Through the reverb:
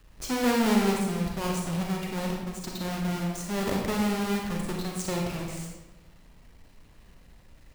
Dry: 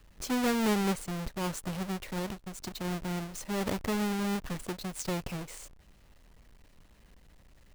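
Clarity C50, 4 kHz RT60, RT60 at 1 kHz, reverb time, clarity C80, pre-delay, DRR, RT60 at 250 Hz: 1.5 dB, 0.70 s, 1.0 s, 1.1 s, 4.5 dB, 32 ms, -0.5 dB, 1.4 s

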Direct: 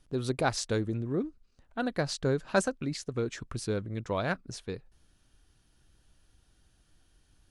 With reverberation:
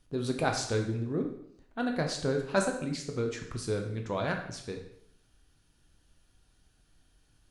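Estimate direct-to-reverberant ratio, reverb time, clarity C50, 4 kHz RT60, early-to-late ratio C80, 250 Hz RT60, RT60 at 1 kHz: 2.5 dB, 0.70 s, 6.5 dB, 0.65 s, 10.0 dB, 0.70 s, 0.70 s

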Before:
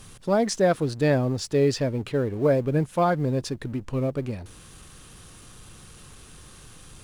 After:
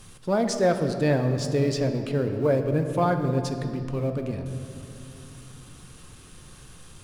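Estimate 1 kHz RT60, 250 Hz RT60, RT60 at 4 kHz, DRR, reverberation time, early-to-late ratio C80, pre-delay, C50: 2.5 s, 4.1 s, 1.5 s, 6.0 dB, 2.8 s, 8.0 dB, 6 ms, 7.5 dB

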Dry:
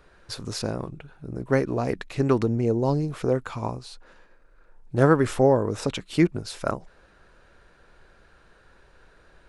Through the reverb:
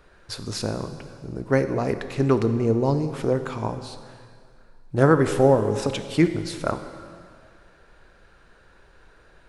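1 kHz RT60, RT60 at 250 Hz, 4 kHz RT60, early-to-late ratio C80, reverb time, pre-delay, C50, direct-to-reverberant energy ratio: 2.0 s, 2.1 s, 2.0 s, 11.0 dB, 2.1 s, 5 ms, 10.0 dB, 9.0 dB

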